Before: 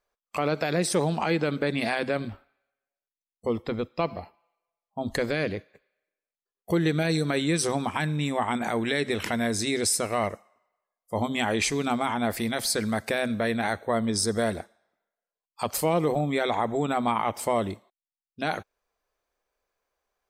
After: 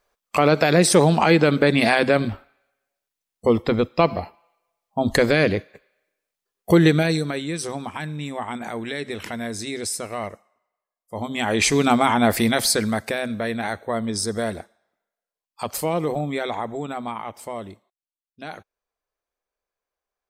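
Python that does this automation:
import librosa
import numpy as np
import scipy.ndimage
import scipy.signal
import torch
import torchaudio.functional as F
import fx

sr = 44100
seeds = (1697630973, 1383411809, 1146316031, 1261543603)

y = fx.gain(x, sr, db=fx.line((6.85, 9.5), (7.43, -3.0), (11.16, -3.0), (11.76, 9.0), (12.51, 9.0), (13.22, 0.5), (16.26, 0.5), (17.39, -7.0)))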